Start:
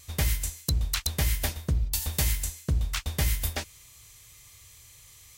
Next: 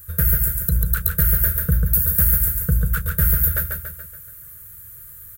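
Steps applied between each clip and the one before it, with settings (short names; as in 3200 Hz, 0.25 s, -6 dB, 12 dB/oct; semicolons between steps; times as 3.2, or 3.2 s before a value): EQ curve 120 Hz 0 dB, 180 Hz +4 dB, 320 Hz -29 dB, 470 Hz +3 dB, 870 Hz -24 dB, 1500 Hz +9 dB, 2100 Hz -15 dB, 3000 Hz -18 dB, 5700 Hz -21 dB, 14000 Hz +12 dB; in parallel at 0 dB: limiter -15.5 dBFS, peak gain reduction 10 dB; on the sum: feedback echo 0.142 s, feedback 51%, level -4 dB; gain +1 dB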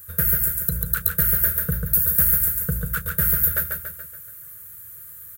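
HPF 190 Hz 6 dB/oct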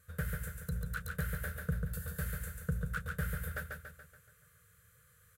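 air absorption 80 m; gain -9 dB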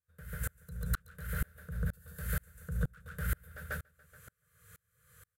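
AGC gain up to 6.5 dB; limiter -25.5 dBFS, peak gain reduction 10 dB; dB-ramp tremolo swelling 2.1 Hz, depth 35 dB; gain +5.5 dB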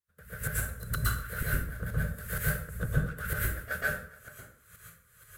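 harmonic-percussive split harmonic -14 dB; in parallel at -5 dB: overloaded stage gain 34.5 dB; on the sum: plate-style reverb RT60 0.57 s, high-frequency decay 0.75×, pre-delay 0.105 s, DRR -7 dB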